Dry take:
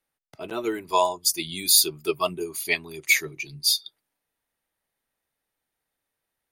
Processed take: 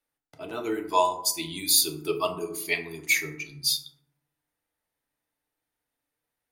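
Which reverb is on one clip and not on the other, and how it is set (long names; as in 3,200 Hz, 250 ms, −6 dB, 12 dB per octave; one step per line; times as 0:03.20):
feedback delay network reverb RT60 0.77 s, low-frequency decay 1.3×, high-frequency decay 0.4×, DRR 3 dB
level −4 dB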